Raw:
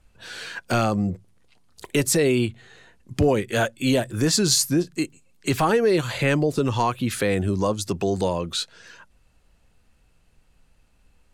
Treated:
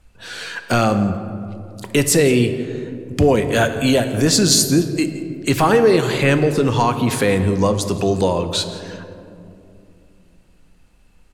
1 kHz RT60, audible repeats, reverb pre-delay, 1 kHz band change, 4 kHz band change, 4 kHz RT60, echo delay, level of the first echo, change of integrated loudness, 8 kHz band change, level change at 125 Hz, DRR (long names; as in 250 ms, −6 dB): 2.4 s, 1, 4 ms, +5.5 dB, +5.5 dB, 1.1 s, 171 ms, −19.5 dB, +5.5 dB, +5.5 dB, +6.0 dB, 8.0 dB